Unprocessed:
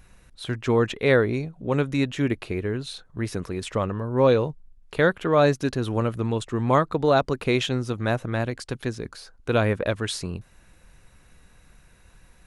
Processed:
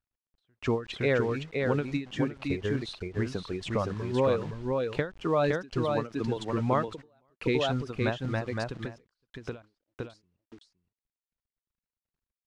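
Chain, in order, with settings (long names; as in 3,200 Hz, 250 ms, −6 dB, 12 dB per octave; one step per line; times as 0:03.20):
reverb reduction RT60 1.7 s
0:05.85–0:06.37: Bessel high-pass filter 160 Hz, order 6
downward compressor 2 to 1, threshold −26 dBFS, peak gain reduction 7 dB
0:09.62–0:10.10: formant resonators in series u
bit-depth reduction 8 bits, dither none
high-frequency loss of the air 110 metres
single-tap delay 515 ms −4 dB
every ending faded ahead of time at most 190 dB per second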